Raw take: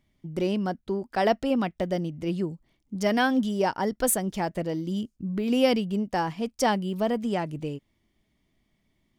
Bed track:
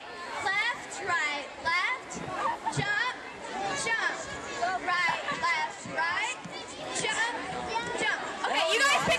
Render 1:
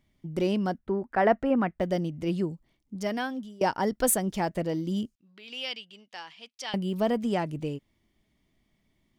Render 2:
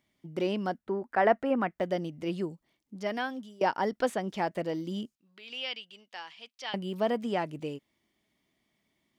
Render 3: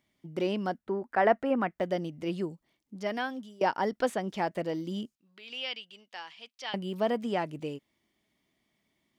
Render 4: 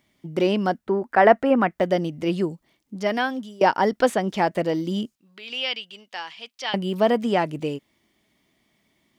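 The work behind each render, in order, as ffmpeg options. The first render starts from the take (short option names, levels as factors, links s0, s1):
-filter_complex "[0:a]asettb=1/sr,asplit=3[s0][s1][s2];[s0]atrim=end=0.784[s3];[s1]atrim=start=0.78:end=1.81,asetpts=PTS-STARTPTS,afade=t=in:d=0.004:c=qsin,afade=t=out:st=1.026:d=0.004:c=qsin,highshelf=f=2700:t=q:w=1.5:g=-13.5[s4];[s2]atrim=start=1.806[s5];[s3][s4]acrossfade=d=0.004:c1=hsin:c2=qsin[s6];[s6][s5]acrossfade=d=0.004:c1=qsin:c2=hsin,asettb=1/sr,asplit=3[s7][s8][s9];[s7]atrim=end=5.154[s10];[s8]atrim=start=5.15:end=6.74,asetpts=PTS-STARTPTS,afade=t=in:d=0.004:c=qsin,afade=t=out:st=1.586:d=0.004:c=qsin,bandpass=f=3300:t=q:w=1.8[s11];[s9]atrim=start=6.736[s12];[s10][s11]acrossfade=d=0.004:c1=hsin:c2=qsin[s13];[s13][s12]acrossfade=d=0.004:c1=qsin:c2=hsin,asplit=2[s14][s15];[s14]atrim=end=3.61,asetpts=PTS-STARTPTS,afade=t=out:st=2.46:d=1.15:silence=0.0749894[s16];[s15]atrim=start=3.61,asetpts=PTS-STARTPTS,afade=t=in:d=0.004:c=hsin:silence=0.0749894[s17];[s16][s17]concat=n=2:v=0:a=1"
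-filter_complex "[0:a]highpass=f=350:p=1,acrossover=split=4500[s0][s1];[s1]acompressor=threshold=0.00141:ratio=4:attack=1:release=60[s2];[s0][s2]amix=inputs=2:normalize=0"
-af anull
-af "volume=2.82"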